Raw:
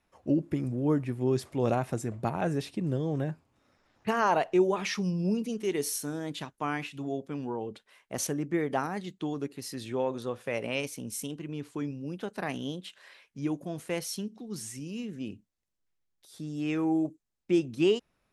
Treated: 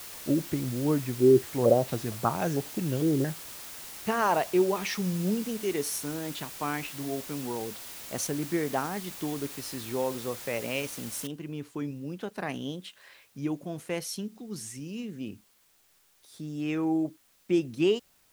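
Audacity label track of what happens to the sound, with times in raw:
1.200000	3.290000	step-sequenced low-pass 4.4 Hz 360–6200 Hz
11.270000	11.270000	noise floor step -43 dB -65 dB

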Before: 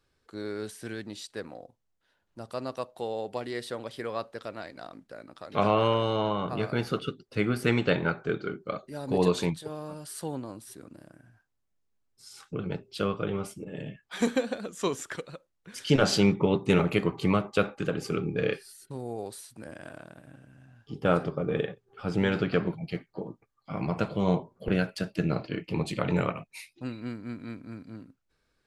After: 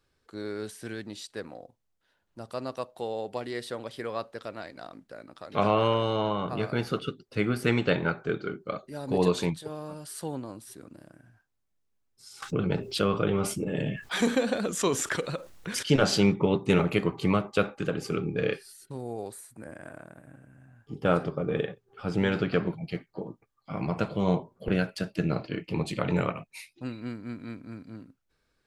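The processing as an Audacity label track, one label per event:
12.420000	15.830000	level flattener amount 50%
19.320000	20.970000	high-order bell 4 kHz -10 dB 1.3 oct

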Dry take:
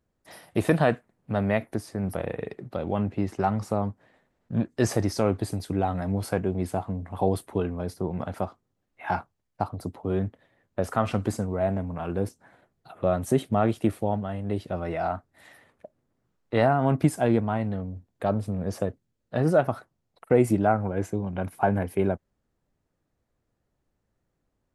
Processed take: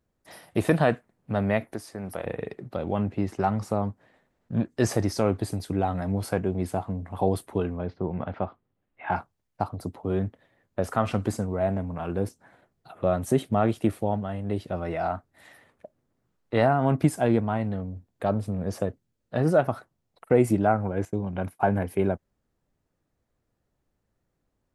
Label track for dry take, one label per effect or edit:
1.740000	2.260000	bass shelf 300 Hz -10 dB
7.770000	9.160000	low-pass 3.3 kHz 24 dB/octave
21.050000	21.740000	expander -40 dBFS

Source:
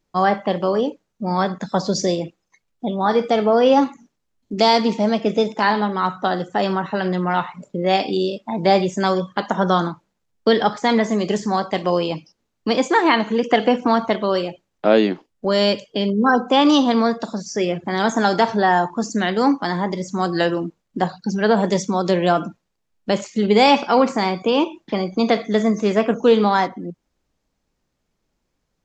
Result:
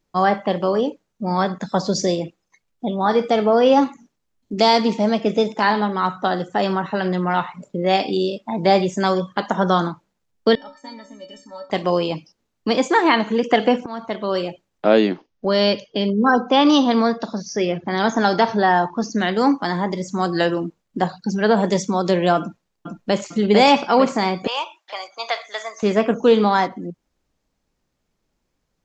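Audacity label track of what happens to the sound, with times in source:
10.550000	11.700000	inharmonic resonator 270 Hz, decay 0.34 s, inharmonicity 0.03
13.860000	14.480000	fade in, from -20.5 dB
15.120000	19.210000	steep low-pass 6.5 kHz 96 dB/octave
22.400000	23.270000	echo throw 450 ms, feedback 55%, level -3 dB
24.470000	25.830000	high-pass 750 Hz 24 dB/octave

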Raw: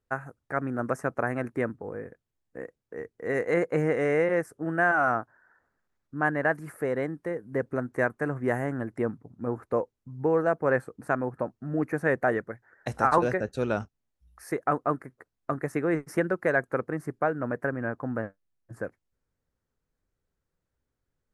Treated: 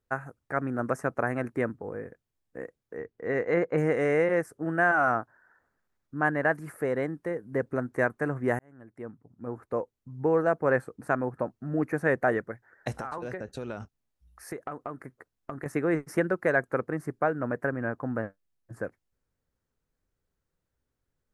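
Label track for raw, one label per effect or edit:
2.970000	3.780000	distance through air 130 m
8.590000	10.320000	fade in
12.930000	15.660000	compression 12:1, threshold -31 dBFS

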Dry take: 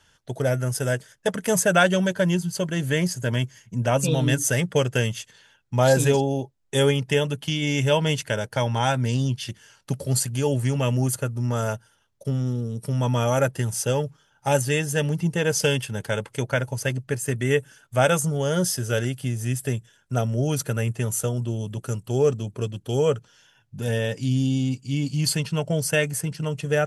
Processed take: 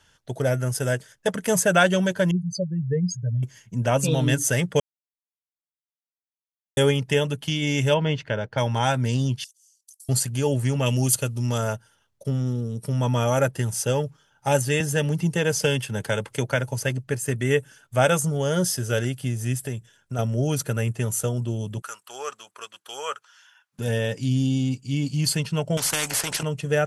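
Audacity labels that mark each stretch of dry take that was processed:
2.310000	3.430000	spectral contrast enhancement exponent 3.3
4.800000	6.770000	mute
7.940000	8.580000	distance through air 230 m
9.440000	10.090000	inverse Chebyshev high-pass stop band from 1.1 kHz, stop band 80 dB
10.860000	11.580000	resonant high shelf 2.2 kHz +7 dB, Q 1.5
14.800000	16.840000	three bands compressed up and down depth 40%
19.600000	20.190000	compression 2:1, threshold -28 dBFS
21.820000	23.790000	resonant high-pass 1.2 kHz, resonance Q 2.1
25.770000	26.430000	spectrum-flattening compressor 4:1

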